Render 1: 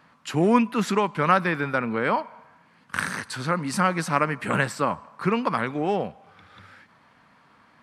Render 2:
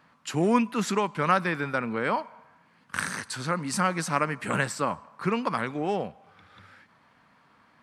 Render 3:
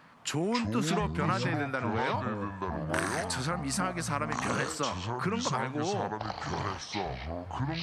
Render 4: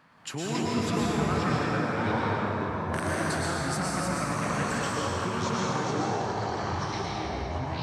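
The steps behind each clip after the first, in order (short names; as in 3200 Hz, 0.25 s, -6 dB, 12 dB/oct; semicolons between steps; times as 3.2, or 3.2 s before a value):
dynamic EQ 7300 Hz, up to +6 dB, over -48 dBFS, Q 0.93; gain -3.5 dB
compressor 3:1, threshold -36 dBFS, peak gain reduction 14.5 dB; echoes that change speed 0.163 s, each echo -6 st, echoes 2; gain +4.5 dB
plate-style reverb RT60 3.8 s, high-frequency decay 0.6×, pre-delay 95 ms, DRR -5.5 dB; gain -4 dB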